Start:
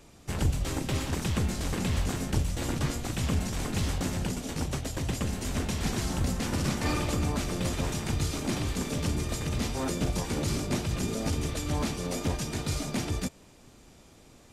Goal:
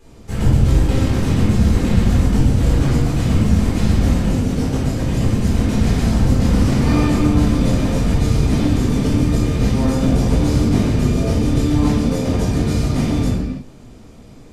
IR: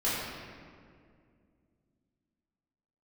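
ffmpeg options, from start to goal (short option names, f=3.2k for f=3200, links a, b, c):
-filter_complex "[0:a]lowshelf=f=480:g=7.5[a];[1:a]atrim=start_sample=2205,afade=t=out:st=0.4:d=0.01,atrim=end_sample=18081[b];[a][b]afir=irnorm=-1:irlink=0,volume=-3dB"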